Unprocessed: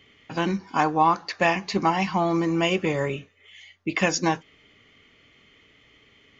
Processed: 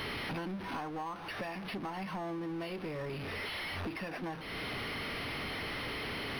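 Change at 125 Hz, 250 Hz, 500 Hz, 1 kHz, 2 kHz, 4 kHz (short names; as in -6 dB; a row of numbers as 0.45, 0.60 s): -11.0, -13.0, -13.5, -16.0, -9.0, -6.5 dB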